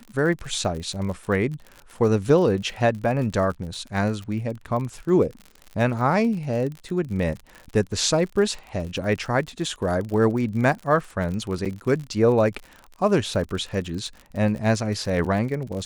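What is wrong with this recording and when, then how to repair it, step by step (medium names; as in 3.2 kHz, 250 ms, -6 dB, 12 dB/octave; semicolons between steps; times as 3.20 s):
crackle 52 per s -31 dBFS
11.65–11.66 s: dropout 6.2 ms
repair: de-click; interpolate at 11.65 s, 6.2 ms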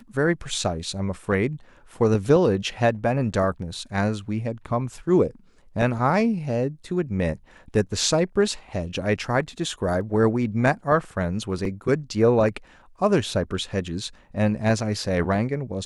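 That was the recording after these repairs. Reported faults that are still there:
nothing left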